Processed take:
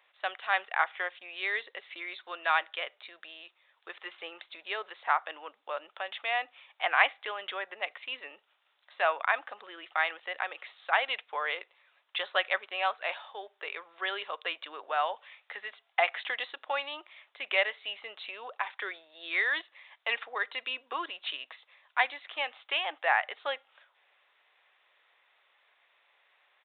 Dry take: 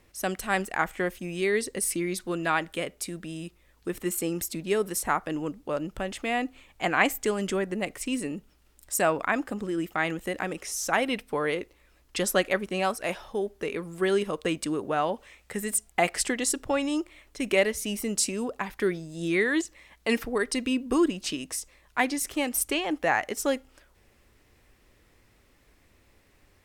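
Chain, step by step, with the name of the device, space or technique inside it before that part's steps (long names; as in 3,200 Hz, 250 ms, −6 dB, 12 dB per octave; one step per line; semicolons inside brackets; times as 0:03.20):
musical greeting card (downsampling to 8,000 Hz; high-pass filter 700 Hz 24 dB per octave; parametric band 3,600 Hz +5 dB 0.28 octaves)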